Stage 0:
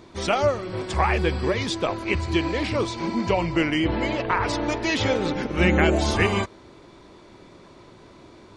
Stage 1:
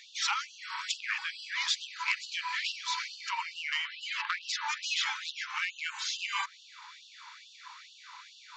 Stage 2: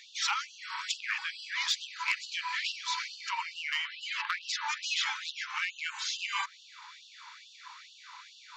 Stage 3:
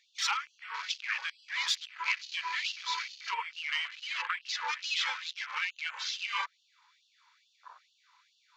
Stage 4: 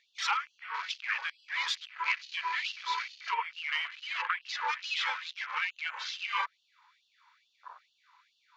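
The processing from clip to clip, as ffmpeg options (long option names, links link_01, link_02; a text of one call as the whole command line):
ffmpeg -i in.wav -af "acompressor=threshold=-28dB:ratio=8,aresample=16000,aeval=exprs='0.141*sin(PI/2*1.58*val(0)/0.141)':channel_layout=same,aresample=44100,afftfilt=real='re*gte(b*sr/1024,810*pow(2700/810,0.5+0.5*sin(2*PI*2.3*pts/sr)))':imag='im*gte(b*sr/1024,810*pow(2700/810,0.5+0.5*sin(2*PI*2.3*pts/sr)))':win_size=1024:overlap=0.75,volume=-1dB" out.wav
ffmpeg -i in.wav -af "asoftclip=type=hard:threshold=-19.5dB" out.wav
ffmpeg -i in.wav -af "afwtdn=0.00794" out.wav
ffmpeg -i in.wav -af "lowpass=frequency=1800:poles=1,volume=4.5dB" out.wav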